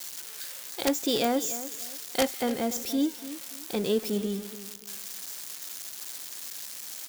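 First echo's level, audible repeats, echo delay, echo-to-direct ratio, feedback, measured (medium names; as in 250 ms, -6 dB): -14.0 dB, 2, 290 ms, -13.5 dB, 28%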